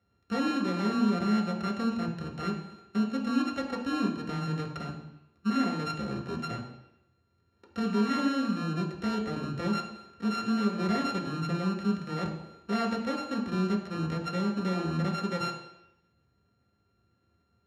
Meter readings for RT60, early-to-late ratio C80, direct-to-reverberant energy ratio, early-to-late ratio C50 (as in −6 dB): 0.85 s, 9.5 dB, −1.0 dB, 7.0 dB